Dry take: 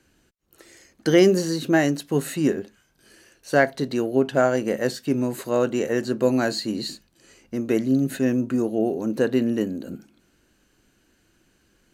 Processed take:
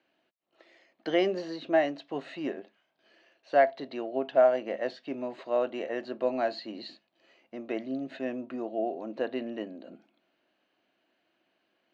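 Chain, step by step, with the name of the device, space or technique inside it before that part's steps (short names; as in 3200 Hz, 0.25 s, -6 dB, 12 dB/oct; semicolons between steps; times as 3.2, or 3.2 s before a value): phone earpiece (speaker cabinet 390–3700 Hz, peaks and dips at 440 Hz -6 dB, 660 Hz +9 dB, 1500 Hz -6 dB); gain -6 dB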